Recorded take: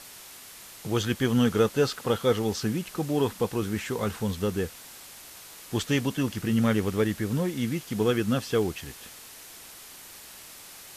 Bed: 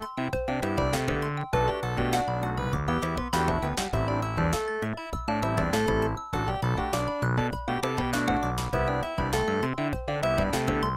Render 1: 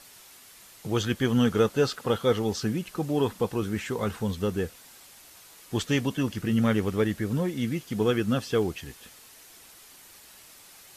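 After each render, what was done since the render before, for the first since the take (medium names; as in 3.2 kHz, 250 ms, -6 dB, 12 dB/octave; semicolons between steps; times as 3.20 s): noise reduction 6 dB, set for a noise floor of -46 dBFS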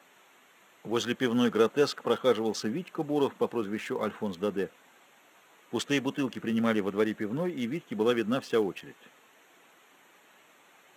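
local Wiener filter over 9 samples; Bessel high-pass 240 Hz, order 4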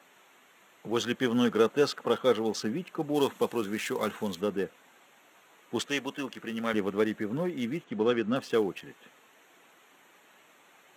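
3.14–4.41 s: treble shelf 3.1 kHz +11 dB; 5.86–6.74 s: bass shelf 310 Hz -11.5 dB; 7.84–8.36 s: distance through air 89 m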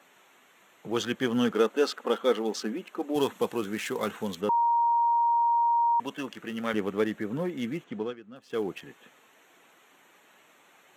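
1.51–3.16 s: brick-wall FIR high-pass 190 Hz; 4.49–6.00 s: bleep 938 Hz -20.5 dBFS; 7.89–8.70 s: dip -18.5 dB, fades 0.27 s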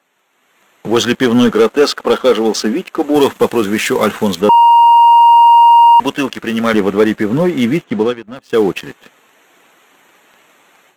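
waveshaping leveller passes 2; level rider gain up to 13.5 dB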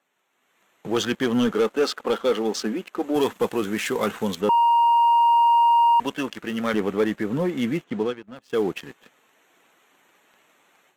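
trim -11 dB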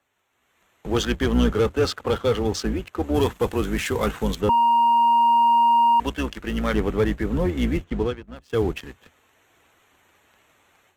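octave divider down 2 oct, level 0 dB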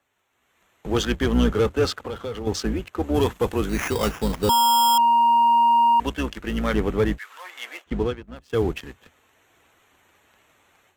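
2.03–2.47 s: compression 3:1, threshold -30 dBFS; 3.69–4.98 s: sample-rate reducer 4.2 kHz; 7.17–7.86 s: high-pass 1.4 kHz -> 580 Hz 24 dB/octave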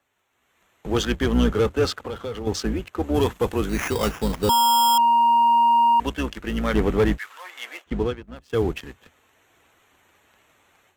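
6.75–7.32 s: waveshaping leveller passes 1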